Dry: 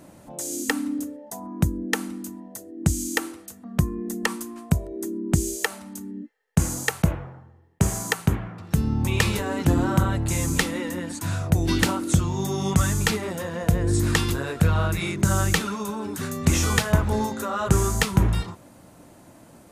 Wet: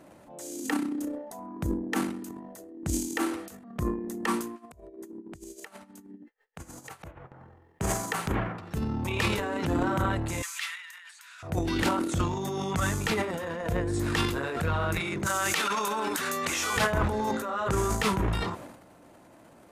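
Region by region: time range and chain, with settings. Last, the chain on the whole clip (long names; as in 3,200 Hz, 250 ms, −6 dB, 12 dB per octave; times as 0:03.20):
0:04.52–0:07.32: downward compressor 8 to 1, threshold −28 dBFS + tremolo with a sine in dB 6.3 Hz, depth 25 dB
0:10.42–0:11.43: Bessel high-pass filter 2,200 Hz, order 6 + high-shelf EQ 3,800 Hz −8 dB
0:15.26–0:16.77: high-pass filter 1,200 Hz 6 dB per octave + envelope flattener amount 70%
whole clip: bass and treble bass −7 dB, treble −8 dB; transient designer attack −5 dB, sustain +12 dB; level −3 dB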